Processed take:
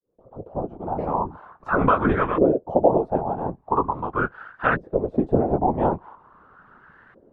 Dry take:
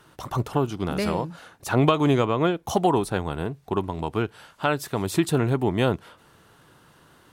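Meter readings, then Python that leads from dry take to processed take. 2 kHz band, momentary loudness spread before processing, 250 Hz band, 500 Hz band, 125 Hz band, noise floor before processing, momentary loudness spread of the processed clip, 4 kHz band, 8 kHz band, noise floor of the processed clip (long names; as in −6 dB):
+3.5 dB, 10 LU, −0.5 dB, +2.5 dB, −4.0 dB, −57 dBFS, 12 LU, below −15 dB, below −40 dB, −59 dBFS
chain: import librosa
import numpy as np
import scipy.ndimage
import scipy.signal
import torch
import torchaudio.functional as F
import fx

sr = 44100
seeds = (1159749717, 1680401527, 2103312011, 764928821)

y = fx.fade_in_head(x, sr, length_s=1.3)
y = fx.chorus_voices(y, sr, voices=4, hz=0.68, base_ms=17, depth_ms=4.0, mix_pct=35)
y = fx.filter_lfo_lowpass(y, sr, shape='saw_up', hz=0.42, low_hz=450.0, high_hz=1800.0, q=6.1)
y = fx.whisperise(y, sr, seeds[0])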